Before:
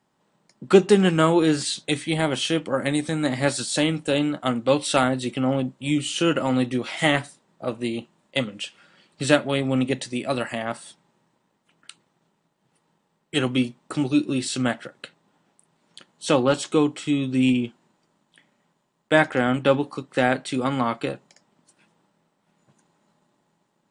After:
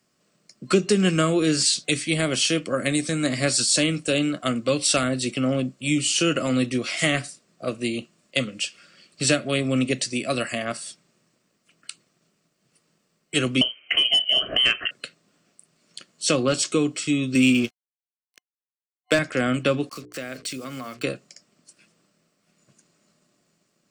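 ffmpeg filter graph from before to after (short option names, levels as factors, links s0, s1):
-filter_complex "[0:a]asettb=1/sr,asplit=3[s0][s1][s2];[s0]atrim=end=13.614[s3];[s1]atrim=start=13.61:end=14.91,asetpts=PTS-STARTPTS,afade=t=in:d=0.004:c=qsin,afade=t=out:st=1.296:d=0.004:c=qsin,lowpass=f=2800:t=q:w=0.5098,lowpass=f=2800:t=q:w=0.6013,lowpass=f=2800:t=q:w=0.9,lowpass=f=2800:t=q:w=2.563,afreqshift=-3300,equalizer=f=340:w=0.41:g=10,acontrast=62[s4];[s2]atrim=start=14.906[s5];[s3][s4]acrossfade=d=0.004:c1=hsin:c2=qsin[s6];[s6][s5]acrossfade=d=0.004:c1=qsin:c2=hsin,asettb=1/sr,asplit=3[s7][s8][s9];[s7]atrim=end=17.354[s10];[s8]atrim=start=17.35:end=19.19,asetpts=PTS-STARTPTS,afade=t=in:d=0.004:c=qsin,afade=t=out:st=1.836:d=0.004:c=qsin,highpass=f=250:p=1,acontrast=81,aeval=exprs='sgn(val(0))*max(abs(val(0))-0.0119,0)':c=same[s11];[s9]atrim=start=19.186[s12];[s10][s11]acrossfade=d=0.004:c1=hsin:c2=qsin[s13];[s13][s12]acrossfade=d=0.004:c1=qsin:c2=hsin,asettb=1/sr,asplit=3[s14][s15][s16];[s14]atrim=end=19.894[s17];[s15]atrim=start=19.89:end=21.03,asetpts=PTS-STARTPTS,afade=t=in:d=0.004:c=qsin,afade=t=out:st=1.136:d=0.004:c=qsin,acrusher=bits=6:mix=0:aa=0.5,bandreject=f=60:t=h:w=6,bandreject=f=120:t=h:w=6,bandreject=f=180:t=h:w=6,bandreject=f=240:t=h:w=6,bandreject=f=300:t=h:w=6,bandreject=f=360:t=h:w=6,bandreject=f=420:t=h:w=6,bandreject=f=480:t=h:w=6,acompressor=threshold=0.0178:ratio=2.5:attack=3.2:release=140:knee=1:detection=peak[s18];[s16]atrim=start=21.026[s19];[s17][s18]acrossfade=d=0.004:c1=hsin:c2=qsin[s20];[s20][s19]acrossfade=d=0.004:c1=qsin:c2=hsin,highshelf=f=6200:g=8.5,acrossover=split=210[s21][s22];[s22]acompressor=threshold=0.126:ratio=5[s23];[s21][s23]amix=inputs=2:normalize=0,superequalizer=9b=0.251:12b=1.58:14b=2.24:15b=1.58"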